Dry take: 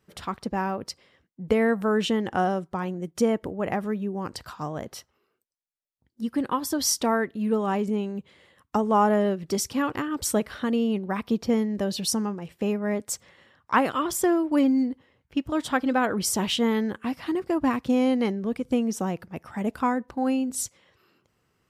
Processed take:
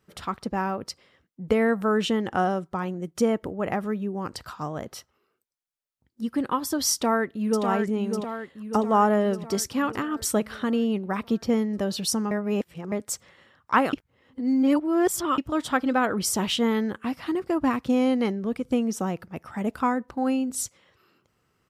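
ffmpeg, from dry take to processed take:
ffmpeg -i in.wav -filter_complex "[0:a]asplit=2[link_01][link_02];[link_02]afade=type=in:start_time=6.93:duration=0.01,afade=type=out:start_time=7.64:duration=0.01,aecho=0:1:600|1200|1800|2400|3000|3600|4200|4800:0.501187|0.300712|0.180427|0.108256|0.0649539|0.0389723|0.0233834|0.01403[link_03];[link_01][link_03]amix=inputs=2:normalize=0,asplit=5[link_04][link_05][link_06][link_07][link_08];[link_04]atrim=end=12.312[link_09];[link_05]atrim=start=12.308:end=12.922,asetpts=PTS-STARTPTS,areverse[link_10];[link_06]atrim=start=12.918:end=13.932[link_11];[link_07]atrim=start=13.928:end=15.382,asetpts=PTS-STARTPTS,areverse[link_12];[link_08]atrim=start=15.378[link_13];[link_09][link_10]acrossfade=duration=0.004:curve1=hsin:curve2=hsin[link_14];[link_14][link_11]acrossfade=duration=0.004:curve1=hsin:curve2=hsin[link_15];[link_15][link_12]acrossfade=duration=0.004:curve1=hsin:curve2=hsin[link_16];[link_16][link_13]acrossfade=duration=0.004:curve1=hsin:curve2=hsin,equalizer=frequency=1300:width_type=o:width=0.2:gain=4" out.wav

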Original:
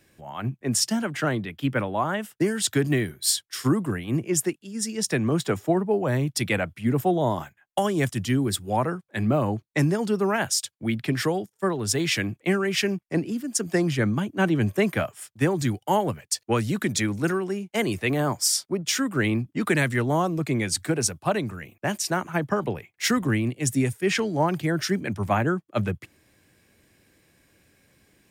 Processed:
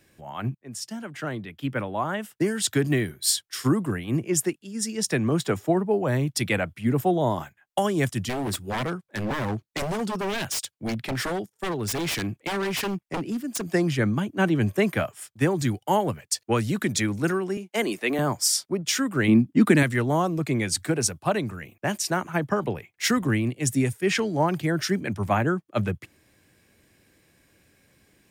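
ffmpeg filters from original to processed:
ffmpeg -i in.wav -filter_complex "[0:a]asettb=1/sr,asplit=3[link_01][link_02][link_03];[link_01]atrim=end=8.294[link_04];[link_02]atrim=start=8.29:end=13.72,asetpts=PTS-STARTPTS,afade=type=in:duration=0.004:curve=qsin,afade=type=out:start_time=5.426:duration=0.004:curve=qsin,aeval=exprs='0.075*(abs(mod(val(0)/0.075+3,4)-2)-1)':channel_layout=same[link_05];[link_03]atrim=start=13.716[link_06];[link_04][link_05]acrossfade=duration=0.004:curve1=hsin:curve2=qsin[link_07];[link_07][link_06]acrossfade=duration=0.004:curve1=qsin:curve2=hsin,asettb=1/sr,asplit=3[link_08][link_09][link_10];[link_08]atrim=end=17.574[link_11];[link_09]atrim=start=17.57:end=18.19,asetpts=PTS-STARTPTS,afade=type=in:duration=0.004:curve=qsin,afade=type=out:start_time=0.616:duration=0.004:curve=qsin,highpass=frequency=220:width=0.5412,highpass=frequency=220:width=1.3066[link_12];[link_10]atrim=start=18.186[link_13];[link_11][link_12]acrossfade=duration=0.004:curve1=hsin:curve2=qsin[link_14];[link_14][link_13]acrossfade=duration=0.004:curve1=qsin:curve2=hsin,asettb=1/sr,asplit=3[link_15][link_16][link_17];[link_15]atrim=end=19.284[link_18];[link_16]atrim=start=19.28:end=19.83,asetpts=PTS-STARTPTS,afade=type=in:duration=0.004:curve=qsin,afade=type=out:start_time=0.546:duration=0.004:curve=qsin,equalizer=frequency=240:width=1.5:gain=11[link_19];[link_17]atrim=start=19.826[link_20];[link_18][link_19]acrossfade=duration=0.004:curve1=hsin:curve2=qsin[link_21];[link_21][link_20]acrossfade=duration=0.004:curve1=qsin:curve2=hsin,asplit=2[link_22][link_23];[link_22]atrim=end=0.55,asetpts=PTS-STARTPTS,afade=type=out:start_time=0.546:duration=0.004:curve=hsin:silence=0.11885[link_24];[link_23]atrim=start=0.55,asetpts=PTS-STARTPTS,afade=type=in:duration=2.7:curve=qsin:silence=0.11885[link_25];[link_24][link_25]concat=n=2:v=0:a=1" out.wav

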